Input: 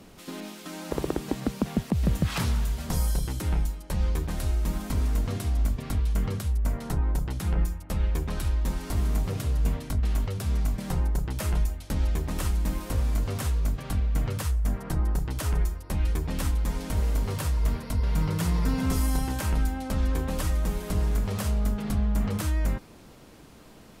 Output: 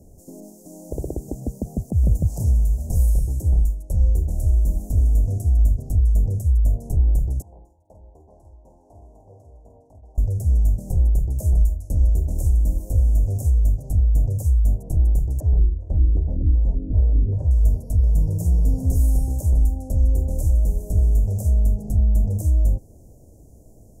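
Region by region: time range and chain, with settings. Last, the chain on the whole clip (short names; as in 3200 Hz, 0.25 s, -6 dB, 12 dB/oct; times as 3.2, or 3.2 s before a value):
7.42–10.18 band-pass 930 Hz, Q 2.6 + doubler 49 ms -6.5 dB
15.4–17.51 LFO low-pass square 2.6 Hz 310–1900 Hz + echo 0.416 s -18.5 dB
whole clip: elliptic band-stop 660–6600 Hz, stop band 40 dB; resonant low shelf 130 Hz +7.5 dB, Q 1.5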